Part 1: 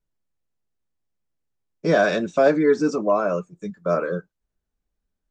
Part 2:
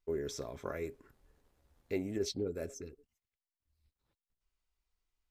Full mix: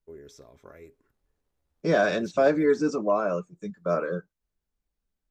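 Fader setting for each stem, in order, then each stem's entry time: -4.0, -9.0 dB; 0.00, 0.00 s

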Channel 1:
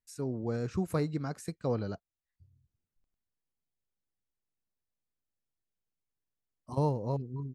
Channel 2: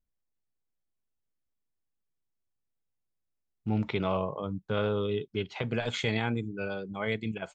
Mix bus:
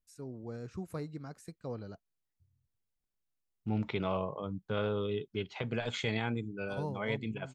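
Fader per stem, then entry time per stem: -9.0, -4.0 dB; 0.00, 0.00 s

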